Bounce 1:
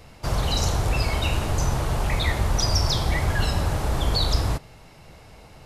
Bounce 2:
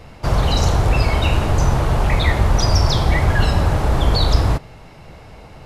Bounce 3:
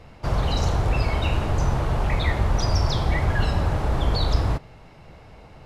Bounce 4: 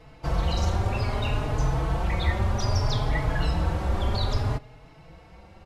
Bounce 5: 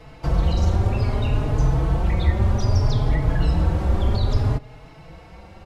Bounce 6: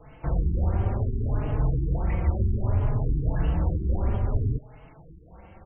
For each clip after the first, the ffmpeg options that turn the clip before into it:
-af "highshelf=f=4.3k:g=-10,volume=7.5dB"
-af "highshelf=f=6.9k:g=-7,volume=-6dB"
-filter_complex "[0:a]asplit=2[a][b];[b]adelay=4.2,afreqshift=0.62[c];[a][c]amix=inputs=2:normalize=1"
-filter_complex "[0:a]acrossover=split=490[a][b];[b]acompressor=threshold=-43dB:ratio=2.5[c];[a][c]amix=inputs=2:normalize=0,volume=6dB"
-af "afftfilt=real='re*lt(b*sr/1024,410*pow(3300/410,0.5+0.5*sin(2*PI*1.5*pts/sr)))':imag='im*lt(b*sr/1024,410*pow(3300/410,0.5+0.5*sin(2*PI*1.5*pts/sr)))':win_size=1024:overlap=0.75,volume=-5dB"

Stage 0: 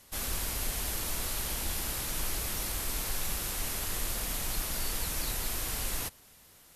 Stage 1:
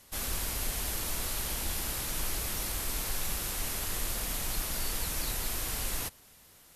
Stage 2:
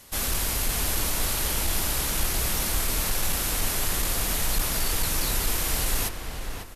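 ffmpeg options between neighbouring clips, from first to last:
-af anull
-filter_complex "[0:a]asoftclip=type=hard:threshold=-27dB,asplit=2[a][b];[b]adelay=548,lowpass=f=2.6k:p=1,volume=-5.5dB,asplit=2[c][d];[d]adelay=548,lowpass=f=2.6k:p=1,volume=0.38,asplit=2[e][f];[f]adelay=548,lowpass=f=2.6k:p=1,volume=0.38,asplit=2[g][h];[h]adelay=548,lowpass=f=2.6k:p=1,volume=0.38,asplit=2[i][j];[j]adelay=548,lowpass=f=2.6k:p=1,volume=0.38[k];[c][e][g][i][k]amix=inputs=5:normalize=0[l];[a][l]amix=inputs=2:normalize=0,aresample=32000,aresample=44100,volume=7.5dB"

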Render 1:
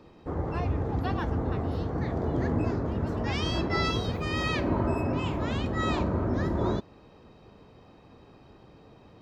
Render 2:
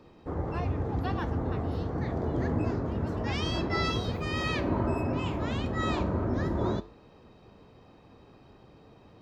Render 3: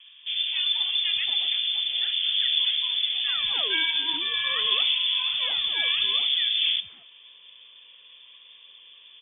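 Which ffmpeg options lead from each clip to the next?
-af "flanger=delay=7.6:depth=3:regen=-86:speed=1.4:shape=sinusoidal,volume=3dB"
-filter_complex "[0:a]lowpass=f=3.1k:t=q:w=0.5098,lowpass=f=3.1k:t=q:w=0.6013,lowpass=f=3.1k:t=q:w=0.9,lowpass=f=3.1k:t=q:w=2.563,afreqshift=-3600,acrossover=split=190|1200[a][b][c];[a]adelay=80[d];[b]adelay=230[e];[d][e][c]amix=inputs=3:normalize=0,volume=4.5dB"

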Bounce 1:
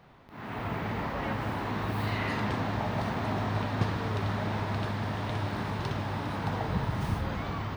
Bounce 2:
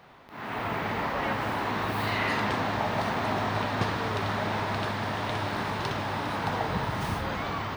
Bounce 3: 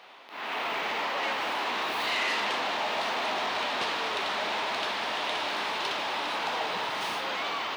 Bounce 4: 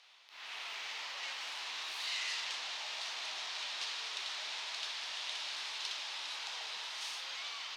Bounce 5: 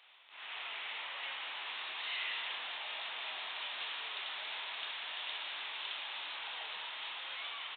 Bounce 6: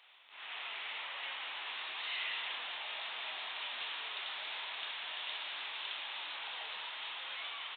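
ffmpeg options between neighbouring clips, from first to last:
-af "lowshelf=f=260:g=-10.5,volume=6dB"
-filter_complex "[0:a]asplit=2[a][b];[b]highpass=f=720:p=1,volume=17dB,asoftclip=type=tanh:threshold=-14dB[c];[a][c]amix=inputs=2:normalize=0,lowpass=f=2.9k:p=1,volume=-6dB,highpass=290,highshelf=f=2.2k:t=q:w=1.5:g=6,volume=-6.5dB"
-af "bandpass=f=6.1k:t=q:w=1.3:csg=0"
-filter_complex "[0:a]aresample=8000,volume=31.5dB,asoftclip=hard,volume=-31.5dB,aresample=44100,asplit=2[a][b];[b]adelay=27,volume=-11dB[c];[a][c]amix=inputs=2:normalize=0,volume=1dB"
-af "flanger=delay=0.9:depth=6.7:regen=88:speed=0.86:shape=triangular,volume=4.5dB"

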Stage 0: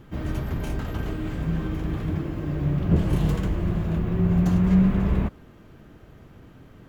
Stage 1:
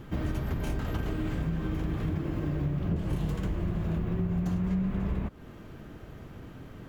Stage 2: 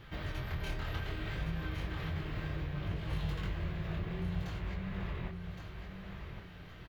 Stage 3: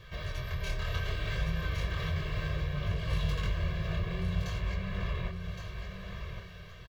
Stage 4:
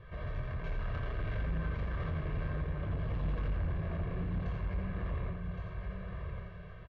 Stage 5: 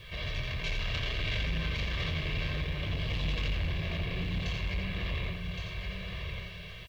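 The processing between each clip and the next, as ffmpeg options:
-af "acompressor=threshold=-30dB:ratio=6,volume=3dB"
-af "equalizer=f=250:t=o:w=1:g=-11,equalizer=f=2k:t=o:w=1:g=6,equalizer=f=4k:t=o:w=1:g=9,equalizer=f=8k:t=o:w=1:g=-6,flanger=delay=19:depth=6.8:speed=0.64,aecho=1:1:1116|2232|3348:0.447|0.125|0.035,volume=-2.5dB"
-af "equalizer=f=5.8k:w=0.69:g=6.5,aecho=1:1:1.8:0.92,dynaudnorm=f=530:g=3:m=3.5dB,volume=-2.5dB"
-af "lowpass=1.5k,asoftclip=type=tanh:threshold=-31.5dB,aecho=1:1:86:0.562"
-af "aexciter=amount=14:drive=2.3:freq=2.2k,volume=1.5dB"

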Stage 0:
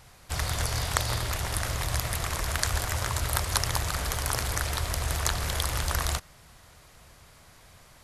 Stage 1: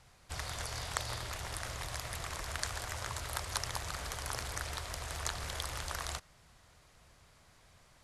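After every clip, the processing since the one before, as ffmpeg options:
-filter_complex "[0:a]lowpass=10k,acrossover=split=390[a][b];[a]alimiter=level_in=5dB:limit=-24dB:level=0:latency=1:release=178,volume=-5dB[c];[c][b]amix=inputs=2:normalize=0,volume=-8.5dB"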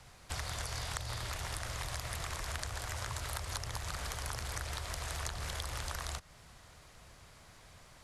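-filter_complex "[0:a]acrossover=split=160|810[a][b][c];[a]acompressor=threshold=-45dB:ratio=4[d];[b]acompressor=threshold=-56dB:ratio=4[e];[c]acompressor=threshold=-45dB:ratio=4[f];[d][e][f]amix=inputs=3:normalize=0,volume=5.5dB"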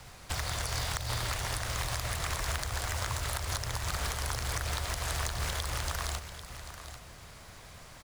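-filter_complex "[0:a]asplit=2[a][b];[b]alimiter=level_in=4.5dB:limit=-24dB:level=0:latency=1:release=155,volume=-4.5dB,volume=1dB[c];[a][c]amix=inputs=2:normalize=0,acrusher=bits=3:mode=log:mix=0:aa=0.000001,aecho=1:1:792:0.266"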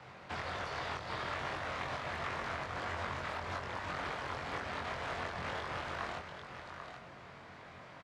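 -filter_complex "[0:a]volume=31.5dB,asoftclip=hard,volume=-31.5dB,highpass=160,lowpass=2.3k,asplit=2[a][b];[b]adelay=22,volume=-2dB[c];[a][c]amix=inputs=2:normalize=0"

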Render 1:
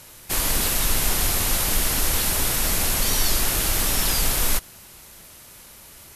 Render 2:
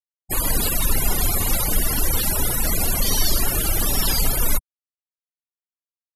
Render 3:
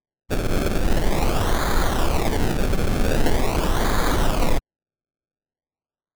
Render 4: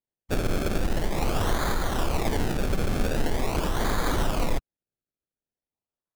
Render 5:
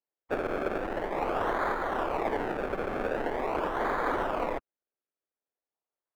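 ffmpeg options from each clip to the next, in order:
-af "afftfilt=real='re*gte(hypot(re,im),0.0708)':imag='im*gte(hypot(re,im),0.0708)':win_size=1024:overlap=0.75,volume=3.5dB"
-af "acrusher=samples=31:mix=1:aa=0.000001:lfo=1:lforange=31:lforate=0.44"
-af "alimiter=limit=-13dB:level=0:latency=1:release=251,volume=-2.5dB"
-filter_complex "[0:a]acrossover=split=320 2200:gain=0.1 1 0.0631[a][b][c];[a][b][c]amix=inputs=3:normalize=0,volume=2dB"

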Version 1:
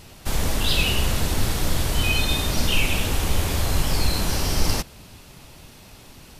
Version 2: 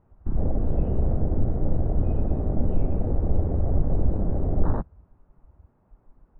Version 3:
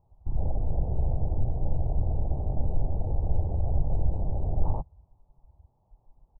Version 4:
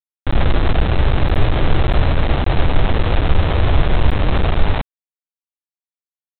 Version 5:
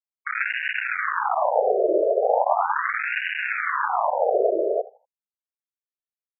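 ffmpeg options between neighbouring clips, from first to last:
-af "lowpass=f=1.3k:w=0.5412,lowpass=f=1.3k:w=1.3066,aemphasis=mode=reproduction:type=50fm,afwtdn=0.0501"
-af "firequalizer=gain_entry='entry(140,0);entry(210,-11);entry(850,3);entry(1500,-27)':delay=0.05:min_phase=1,volume=-3dB"
-af "aresample=8000,acrusher=bits=4:mix=0:aa=0.000001,aresample=44100,dynaudnorm=f=170:g=3:m=13dB"
-af "aecho=1:1:79|158|237:0.141|0.0438|0.0136,adynamicsmooth=sensitivity=1.5:basefreq=500,afftfilt=real='re*between(b*sr/1024,480*pow(2100/480,0.5+0.5*sin(2*PI*0.38*pts/sr))/1.41,480*pow(2100/480,0.5+0.5*sin(2*PI*0.38*pts/sr))*1.41)':imag='im*between(b*sr/1024,480*pow(2100/480,0.5+0.5*sin(2*PI*0.38*pts/sr))/1.41,480*pow(2100/480,0.5+0.5*sin(2*PI*0.38*pts/sr))*1.41)':win_size=1024:overlap=0.75,volume=7.5dB"

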